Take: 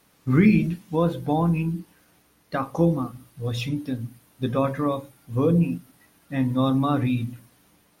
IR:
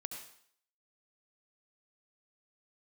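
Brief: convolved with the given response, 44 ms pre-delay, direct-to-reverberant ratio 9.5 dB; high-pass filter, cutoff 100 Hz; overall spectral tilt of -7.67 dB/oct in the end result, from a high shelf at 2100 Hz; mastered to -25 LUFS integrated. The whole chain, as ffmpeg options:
-filter_complex "[0:a]highpass=100,highshelf=f=2.1k:g=-8.5,asplit=2[a][b];[1:a]atrim=start_sample=2205,adelay=44[c];[b][c]afir=irnorm=-1:irlink=0,volume=-7.5dB[d];[a][d]amix=inputs=2:normalize=0"

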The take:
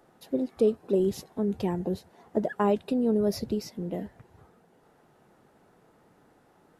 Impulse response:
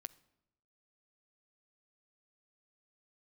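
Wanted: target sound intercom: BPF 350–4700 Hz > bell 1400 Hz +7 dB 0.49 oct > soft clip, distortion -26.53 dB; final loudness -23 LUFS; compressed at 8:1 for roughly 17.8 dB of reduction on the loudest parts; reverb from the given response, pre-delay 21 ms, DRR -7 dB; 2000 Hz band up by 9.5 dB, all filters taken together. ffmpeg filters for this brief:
-filter_complex "[0:a]equalizer=f=2k:t=o:g=8,acompressor=threshold=-37dB:ratio=8,asplit=2[a][b];[1:a]atrim=start_sample=2205,adelay=21[c];[b][c]afir=irnorm=-1:irlink=0,volume=12dB[d];[a][d]amix=inputs=2:normalize=0,highpass=350,lowpass=4.7k,equalizer=f=1.4k:t=o:w=0.49:g=7,asoftclip=threshold=-18dB,volume=14.5dB"

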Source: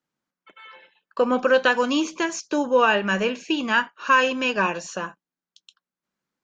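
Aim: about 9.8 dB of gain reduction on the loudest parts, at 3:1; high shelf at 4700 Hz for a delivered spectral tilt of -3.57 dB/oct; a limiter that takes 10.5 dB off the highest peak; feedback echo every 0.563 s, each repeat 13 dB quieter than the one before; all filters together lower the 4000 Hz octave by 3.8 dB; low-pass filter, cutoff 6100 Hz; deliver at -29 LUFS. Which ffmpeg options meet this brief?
-af "lowpass=6.1k,equalizer=f=4k:t=o:g=-9,highshelf=f=4.7k:g=6,acompressor=threshold=-27dB:ratio=3,alimiter=level_in=1dB:limit=-24dB:level=0:latency=1,volume=-1dB,aecho=1:1:563|1126|1689:0.224|0.0493|0.0108,volume=5dB"

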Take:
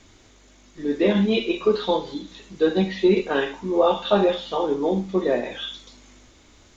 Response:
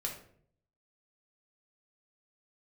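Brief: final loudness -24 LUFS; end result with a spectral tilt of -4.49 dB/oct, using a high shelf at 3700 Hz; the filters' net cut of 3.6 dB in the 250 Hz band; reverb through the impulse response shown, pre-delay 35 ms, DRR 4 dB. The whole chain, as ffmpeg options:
-filter_complex "[0:a]equalizer=f=250:t=o:g=-5.5,highshelf=f=3.7k:g=-8.5,asplit=2[a][b];[1:a]atrim=start_sample=2205,adelay=35[c];[b][c]afir=irnorm=-1:irlink=0,volume=-5dB[d];[a][d]amix=inputs=2:normalize=0,volume=-1.5dB"

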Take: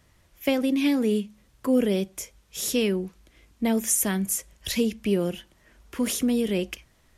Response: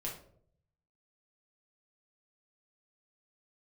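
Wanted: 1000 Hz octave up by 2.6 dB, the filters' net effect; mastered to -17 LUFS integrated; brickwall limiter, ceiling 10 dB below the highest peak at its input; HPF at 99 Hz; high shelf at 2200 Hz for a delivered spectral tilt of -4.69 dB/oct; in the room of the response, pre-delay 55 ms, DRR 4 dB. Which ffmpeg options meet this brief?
-filter_complex "[0:a]highpass=99,equalizer=f=1k:t=o:g=4.5,highshelf=f=2.2k:g=-5.5,alimiter=limit=-21.5dB:level=0:latency=1,asplit=2[a][b];[1:a]atrim=start_sample=2205,adelay=55[c];[b][c]afir=irnorm=-1:irlink=0,volume=-4.5dB[d];[a][d]amix=inputs=2:normalize=0,volume=13dB"

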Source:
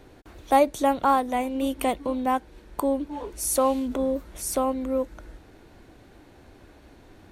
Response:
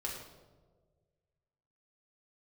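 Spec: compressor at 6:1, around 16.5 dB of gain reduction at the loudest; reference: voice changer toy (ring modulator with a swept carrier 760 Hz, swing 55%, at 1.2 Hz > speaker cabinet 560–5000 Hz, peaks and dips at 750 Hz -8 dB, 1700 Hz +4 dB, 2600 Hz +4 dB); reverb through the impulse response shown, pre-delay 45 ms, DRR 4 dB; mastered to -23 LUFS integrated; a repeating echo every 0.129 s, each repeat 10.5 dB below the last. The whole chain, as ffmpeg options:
-filter_complex "[0:a]acompressor=threshold=-32dB:ratio=6,aecho=1:1:129|258|387:0.299|0.0896|0.0269,asplit=2[a][b];[1:a]atrim=start_sample=2205,adelay=45[c];[b][c]afir=irnorm=-1:irlink=0,volume=-5.5dB[d];[a][d]amix=inputs=2:normalize=0,aeval=exprs='val(0)*sin(2*PI*760*n/s+760*0.55/1.2*sin(2*PI*1.2*n/s))':c=same,highpass=560,equalizer=f=750:t=q:w=4:g=-8,equalizer=f=1.7k:t=q:w=4:g=4,equalizer=f=2.6k:t=q:w=4:g=4,lowpass=f=5k:w=0.5412,lowpass=f=5k:w=1.3066,volume=15dB"

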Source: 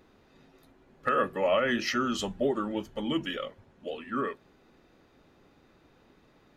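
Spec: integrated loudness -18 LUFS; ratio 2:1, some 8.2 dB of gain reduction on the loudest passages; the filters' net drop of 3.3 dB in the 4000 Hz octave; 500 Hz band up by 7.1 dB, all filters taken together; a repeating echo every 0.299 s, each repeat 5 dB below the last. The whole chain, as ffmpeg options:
-af "equalizer=f=500:t=o:g=8.5,equalizer=f=4k:t=o:g=-5,acompressor=threshold=-31dB:ratio=2,aecho=1:1:299|598|897|1196|1495|1794|2093:0.562|0.315|0.176|0.0988|0.0553|0.031|0.0173,volume=13dB"

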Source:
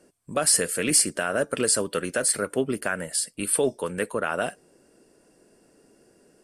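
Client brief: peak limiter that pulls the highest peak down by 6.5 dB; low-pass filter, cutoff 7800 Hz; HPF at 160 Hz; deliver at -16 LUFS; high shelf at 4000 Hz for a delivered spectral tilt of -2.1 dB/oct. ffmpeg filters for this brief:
-af "highpass=160,lowpass=7.8k,highshelf=f=4k:g=3.5,volume=11dB,alimiter=limit=-4dB:level=0:latency=1"

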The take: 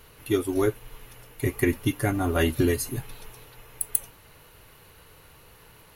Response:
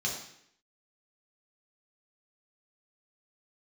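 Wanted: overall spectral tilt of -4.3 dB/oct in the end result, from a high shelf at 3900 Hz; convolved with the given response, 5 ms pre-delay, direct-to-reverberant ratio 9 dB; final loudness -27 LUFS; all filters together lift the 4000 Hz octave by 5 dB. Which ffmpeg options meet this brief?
-filter_complex "[0:a]highshelf=f=3.9k:g=4,equalizer=f=4k:t=o:g=4.5,asplit=2[a][b];[1:a]atrim=start_sample=2205,adelay=5[c];[b][c]afir=irnorm=-1:irlink=0,volume=-14.5dB[d];[a][d]amix=inputs=2:normalize=0,volume=-2.5dB"

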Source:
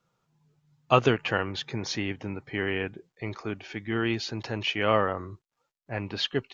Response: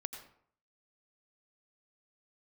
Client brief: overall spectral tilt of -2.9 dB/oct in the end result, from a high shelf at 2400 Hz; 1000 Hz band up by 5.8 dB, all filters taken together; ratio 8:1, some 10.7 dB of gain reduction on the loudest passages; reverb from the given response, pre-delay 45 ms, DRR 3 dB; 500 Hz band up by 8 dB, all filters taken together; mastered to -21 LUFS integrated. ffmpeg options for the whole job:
-filter_complex "[0:a]equalizer=f=500:t=o:g=8.5,equalizer=f=1k:t=o:g=4.5,highshelf=f=2.4k:g=4,acompressor=threshold=-19dB:ratio=8,asplit=2[a][b];[1:a]atrim=start_sample=2205,adelay=45[c];[b][c]afir=irnorm=-1:irlink=0,volume=-1.5dB[d];[a][d]amix=inputs=2:normalize=0,volume=5.5dB"

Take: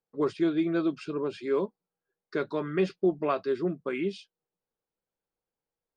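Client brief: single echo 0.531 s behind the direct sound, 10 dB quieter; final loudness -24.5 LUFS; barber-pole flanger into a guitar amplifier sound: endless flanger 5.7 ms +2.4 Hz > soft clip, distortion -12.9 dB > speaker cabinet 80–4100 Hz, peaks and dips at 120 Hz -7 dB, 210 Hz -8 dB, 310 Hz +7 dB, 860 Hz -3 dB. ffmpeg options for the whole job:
-filter_complex "[0:a]aecho=1:1:531:0.316,asplit=2[a][b];[b]adelay=5.7,afreqshift=2.4[c];[a][c]amix=inputs=2:normalize=1,asoftclip=threshold=-26.5dB,highpass=80,equalizer=f=120:t=q:w=4:g=-7,equalizer=f=210:t=q:w=4:g=-8,equalizer=f=310:t=q:w=4:g=7,equalizer=f=860:t=q:w=4:g=-3,lowpass=f=4.1k:w=0.5412,lowpass=f=4.1k:w=1.3066,volume=8.5dB"

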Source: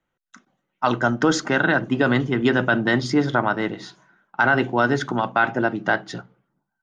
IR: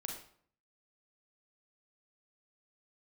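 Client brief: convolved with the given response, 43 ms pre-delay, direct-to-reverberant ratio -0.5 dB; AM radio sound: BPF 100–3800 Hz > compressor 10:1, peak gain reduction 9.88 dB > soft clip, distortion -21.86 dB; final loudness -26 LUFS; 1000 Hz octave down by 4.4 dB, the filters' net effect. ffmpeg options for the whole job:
-filter_complex "[0:a]equalizer=f=1k:t=o:g=-6.5,asplit=2[a][b];[1:a]atrim=start_sample=2205,adelay=43[c];[b][c]afir=irnorm=-1:irlink=0,volume=1.5dB[d];[a][d]amix=inputs=2:normalize=0,highpass=100,lowpass=3.8k,acompressor=threshold=-21dB:ratio=10,asoftclip=threshold=-15.5dB,volume=1dB"

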